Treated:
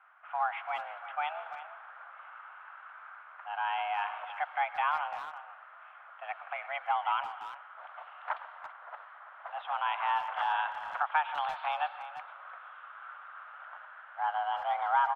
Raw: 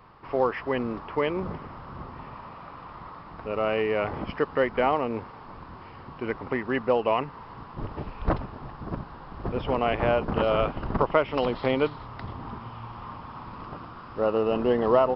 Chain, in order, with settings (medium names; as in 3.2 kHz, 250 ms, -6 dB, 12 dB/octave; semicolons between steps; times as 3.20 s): level-controlled noise filter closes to 1.9 kHz, open at -19 dBFS; on a send at -14.5 dB: reverberation RT60 0.95 s, pre-delay 65 ms; on the sum: mistuned SSB +300 Hz 430–3200 Hz; speakerphone echo 340 ms, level -12 dB; trim -6 dB